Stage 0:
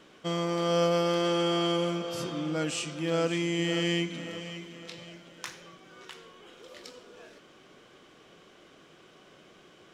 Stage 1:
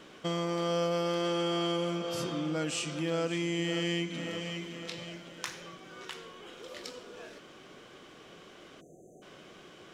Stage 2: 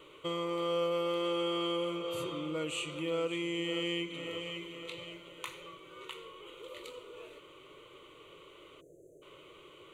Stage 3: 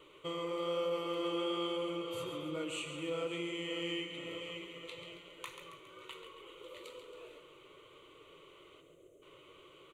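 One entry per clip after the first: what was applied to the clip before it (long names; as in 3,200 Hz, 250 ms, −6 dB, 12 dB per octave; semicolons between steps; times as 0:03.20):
time-frequency box erased 0:08.81–0:09.22, 770–6,000 Hz; downward compressor 2 to 1, threshold −37 dBFS, peak gain reduction 9 dB; level +3.5 dB
phaser with its sweep stopped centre 1,100 Hz, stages 8
flanger 1.1 Hz, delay 1.6 ms, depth 9.9 ms, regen −52%; on a send: repeating echo 137 ms, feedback 52%, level −9 dB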